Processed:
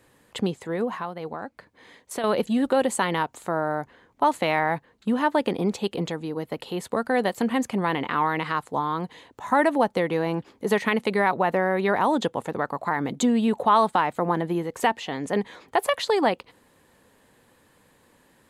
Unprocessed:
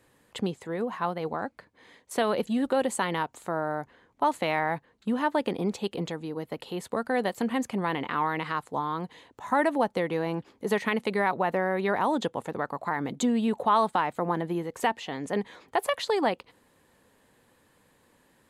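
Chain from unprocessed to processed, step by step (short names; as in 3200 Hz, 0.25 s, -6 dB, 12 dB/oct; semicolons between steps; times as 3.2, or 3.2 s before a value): 0.97–2.24 compressor 2:1, threshold -38 dBFS, peak gain reduction 9.5 dB; gain +4 dB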